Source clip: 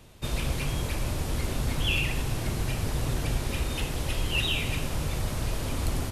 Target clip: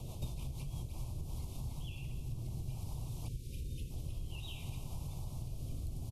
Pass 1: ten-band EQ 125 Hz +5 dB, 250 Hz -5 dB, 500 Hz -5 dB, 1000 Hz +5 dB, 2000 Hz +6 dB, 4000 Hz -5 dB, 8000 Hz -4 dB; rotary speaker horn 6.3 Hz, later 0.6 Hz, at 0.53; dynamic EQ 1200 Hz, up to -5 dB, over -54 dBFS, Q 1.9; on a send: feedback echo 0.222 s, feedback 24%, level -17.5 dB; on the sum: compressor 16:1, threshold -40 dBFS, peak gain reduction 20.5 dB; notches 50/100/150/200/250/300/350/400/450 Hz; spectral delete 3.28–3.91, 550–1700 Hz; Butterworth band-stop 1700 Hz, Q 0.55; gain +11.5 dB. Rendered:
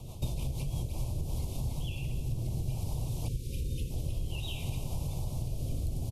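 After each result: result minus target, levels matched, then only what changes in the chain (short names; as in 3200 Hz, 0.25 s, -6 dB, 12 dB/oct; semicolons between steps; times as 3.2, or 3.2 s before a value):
compressor: peak gain reduction -7.5 dB; 500 Hz band +2.5 dB
change: compressor 16:1, threshold -48 dBFS, peak gain reduction 28 dB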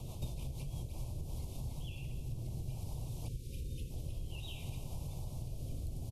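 500 Hz band +2.5 dB
change: dynamic EQ 530 Hz, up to -5 dB, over -54 dBFS, Q 1.9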